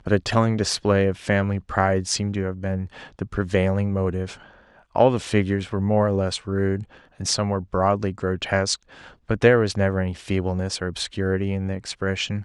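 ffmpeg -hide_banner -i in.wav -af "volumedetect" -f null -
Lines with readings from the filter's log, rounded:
mean_volume: -23.0 dB
max_volume: -3.1 dB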